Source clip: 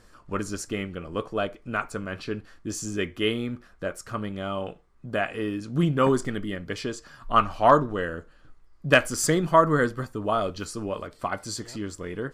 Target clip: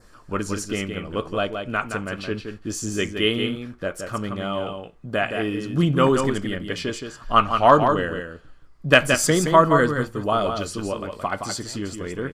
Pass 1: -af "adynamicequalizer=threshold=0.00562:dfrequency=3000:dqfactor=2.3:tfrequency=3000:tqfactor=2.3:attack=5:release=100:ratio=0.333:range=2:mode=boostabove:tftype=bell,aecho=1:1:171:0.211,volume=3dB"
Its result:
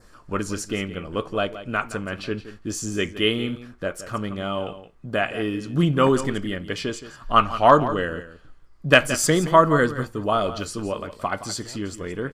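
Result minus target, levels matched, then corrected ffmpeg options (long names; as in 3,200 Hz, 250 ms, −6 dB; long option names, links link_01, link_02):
echo-to-direct −7 dB
-af "adynamicequalizer=threshold=0.00562:dfrequency=3000:dqfactor=2.3:tfrequency=3000:tqfactor=2.3:attack=5:release=100:ratio=0.333:range=2:mode=boostabove:tftype=bell,aecho=1:1:171:0.473,volume=3dB"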